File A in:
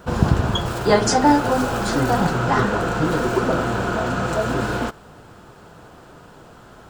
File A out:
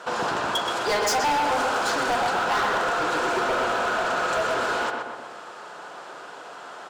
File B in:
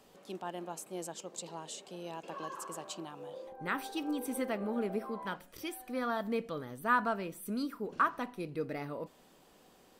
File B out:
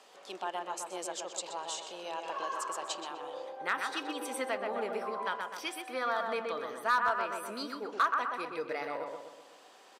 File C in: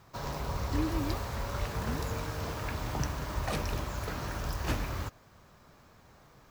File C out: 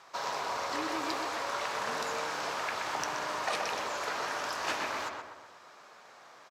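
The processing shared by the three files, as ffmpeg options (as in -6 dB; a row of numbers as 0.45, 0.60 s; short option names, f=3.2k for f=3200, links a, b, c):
-filter_complex "[0:a]highpass=630,lowpass=7.9k,asplit=2[a][b];[b]adelay=125,lowpass=f=2.3k:p=1,volume=-4dB,asplit=2[c][d];[d]adelay=125,lowpass=f=2.3k:p=1,volume=0.5,asplit=2[e][f];[f]adelay=125,lowpass=f=2.3k:p=1,volume=0.5,asplit=2[g][h];[h]adelay=125,lowpass=f=2.3k:p=1,volume=0.5,asplit=2[i][j];[j]adelay=125,lowpass=f=2.3k:p=1,volume=0.5,asplit=2[k][l];[l]adelay=125,lowpass=f=2.3k:p=1,volume=0.5[m];[a][c][e][g][i][k][m]amix=inputs=7:normalize=0,asplit=2[n][o];[o]acompressor=threshold=-39dB:ratio=6,volume=2dB[p];[n][p]amix=inputs=2:normalize=0,asoftclip=type=hard:threshold=-20dB"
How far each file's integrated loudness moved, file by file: -3.5, +2.5, +1.0 LU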